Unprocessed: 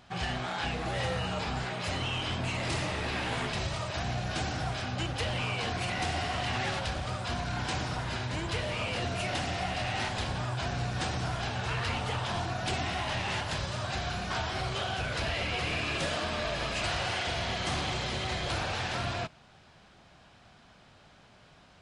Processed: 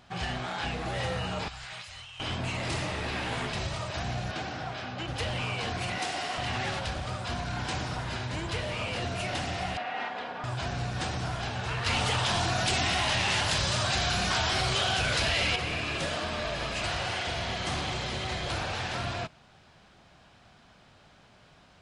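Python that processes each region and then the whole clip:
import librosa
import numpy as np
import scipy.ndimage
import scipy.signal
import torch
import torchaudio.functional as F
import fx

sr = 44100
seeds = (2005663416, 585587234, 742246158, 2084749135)

y = fx.chain(x, sr, fx.tone_stack(knobs='10-0-10'),
    fx.over_compress(threshold_db=-44.0, ratio=-1.0), at=(1.48, 2.2))
y = fx.chain(y, sr, fx.highpass(hz=210.0, slope=6),
    fx.air_absorb(metres=110.0), at=(4.31, 5.08))
y = fx.chain(y, sr, fx.highpass(hz=160.0, slope=12),
    fx.bass_treble(bass_db=-7, treble_db=3), at=(5.98, 6.38))
y = fx.chain(y, sr, fx.bandpass_edges(low_hz=370.0, high_hz=2200.0),
    fx.comb(ms=4.2, depth=0.51), at=(9.77, 10.44))
y = fx.chain(y, sr, fx.high_shelf(hz=2500.0, db=9.0),
    fx.env_flatten(amount_pct=70), at=(11.86, 15.56))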